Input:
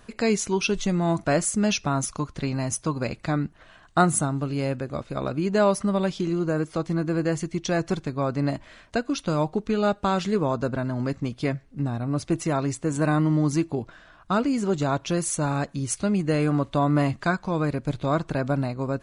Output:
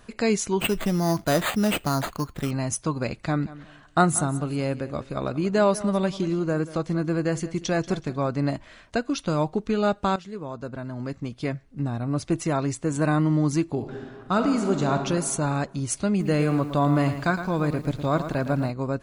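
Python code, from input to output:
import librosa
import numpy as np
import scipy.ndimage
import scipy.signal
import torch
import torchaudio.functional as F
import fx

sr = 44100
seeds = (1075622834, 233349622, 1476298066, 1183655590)

y = fx.resample_bad(x, sr, factor=8, down='none', up='hold', at=(0.6, 2.51))
y = fx.echo_feedback(y, sr, ms=185, feedback_pct=27, wet_db=-17.0, at=(3.29, 8.3), fade=0.02)
y = fx.reverb_throw(y, sr, start_s=13.63, length_s=1.36, rt60_s=1.9, drr_db=5.0)
y = fx.echo_crushed(y, sr, ms=112, feedback_pct=35, bits=8, wet_db=-10.0, at=(16.09, 18.7))
y = fx.edit(y, sr, fx.fade_in_from(start_s=10.16, length_s=1.86, floor_db=-15.5), tone=tone)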